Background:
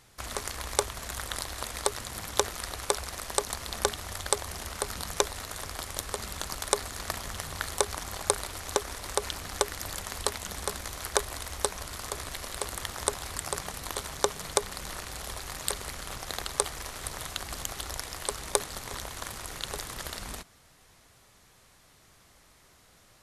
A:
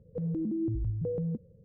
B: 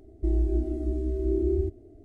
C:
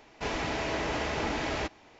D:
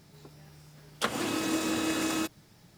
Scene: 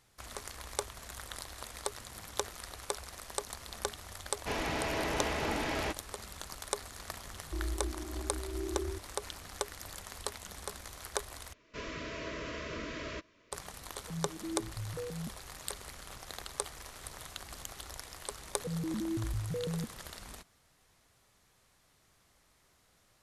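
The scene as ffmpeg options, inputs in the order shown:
-filter_complex "[3:a]asplit=2[s0][s1];[1:a]asplit=2[s2][s3];[0:a]volume=0.355[s4];[s1]asuperstop=centerf=800:order=12:qfactor=2.8[s5];[s2]asplit=2[s6][s7];[s7]afreqshift=-1.8[s8];[s6][s8]amix=inputs=2:normalize=1[s9];[s4]asplit=2[s10][s11];[s10]atrim=end=11.534[s12];[s5]atrim=end=1.99,asetpts=PTS-STARTPTS,volume=0.376[s13];[s11]atrim=start=13.516[s14];[s0]atrim=end=1.99,asetpts=PTS-STARTPTS,volume=0.75,afade=t=in:d=0.004:c=hsin,afade=t=out:st=1.986:d=0.004:c=hsin,adelay=187425S[s15];[2:a]atrim=end=2.04,asetpts=PTS-STARTPTS,volume=0.251,afade=t=in:d=0.004:c=hsin,afade=t=out:st=2.036:d=0.004:c=hsin,adelay=7290[s16];[s9]atrim=end=1.64,asetpts=PTS-STARTPTS,volume=0.473,afade=t=in:d=0.004:c=hsin,afade=t=out:st=1.636:d=0.004:c=hsin,adelay=13920[s17];[s3]atrim=end=1.64,asetpts=PTS-STARTPTS,volume=0.631,afade=t=in:d=0.004:c=hsin,afade=t=out:st=1.636:d=0.004:c=hsin,adelay=18490[s18];[s12][s13]acrossfade=d=0.004:c1=hsin:c2=hsin[s19];[s19][s14]acrossfade=d=0.004:c1=hsin:c2=hsin[s20];[s20][s15][s16][s17][s18]amix=inputs=5:normalize=0"

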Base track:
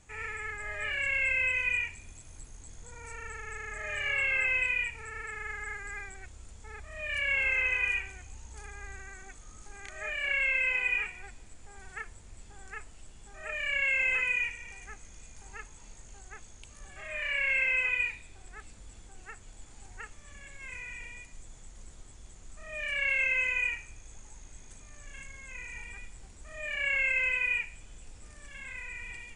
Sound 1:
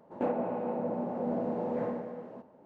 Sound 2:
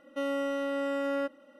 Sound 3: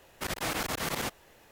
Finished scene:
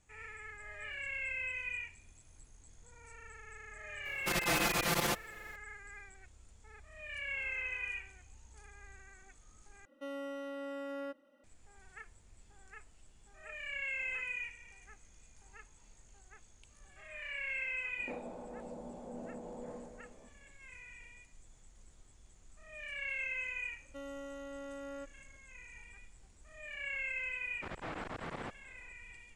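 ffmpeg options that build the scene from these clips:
-filter_complex "[3:a]asplit=2[s0][s1];[2:a]asplit=2[s2][s3];[0:a]volume=0.299[s4];[s0]aecho=1:1:5.8:0.95[s5];[s1]lowpass=2000[s6];[s4]asplit=2[s7][s8];[s7]atrim=end=9.854[s9];[s2]atrim=end=1.59,asetpts=PTS-STARTPTS,volume=0.282[s10];[s8]atrim=start=11.436[s11];[s5]atrim=end=1.51,asetpts=PTS-STARTPTS,volume=0.794,afade=t=in:d=0.004:c=hsin,afade=t=out:st=1.506:d=0.004:c=hsin,adelay=178605S[s12];[1:a]atrim=end=2.65,asetpts=PTS-STARTPTS,volume=0.211,afade=t=in:d=0.004:c=hsin,afade=t=out:st=2.646:d=0.004:c=hsin,adelay=17870[s13];[s3]atrim=end=1.59,asetpts=PTS-STARTPTS,volume=0.188,afade=t=in:d=0.004:c=hsin,afade=t=out:st=1.586:d=0.004:c=hsin,adelay=23780[s14];[s6]atrim=end=1.51,asetpts=PTS-STARTPTS,volume=0.398,afade=t=in:d=0.004:c=hsin,afade=t=out:st=1.506:d=0.004:c=hsin,adelay=27410[s15];[s9][s10]acrossfade=d=0.004:c1=hsin:c2=hsin[s16];[s16][s11]acrossfade=d=0.004:c1=hsin:c2=hsin[s17];[s17][s12][s13][s14][s15]amix=inputs=5:normalize=0"

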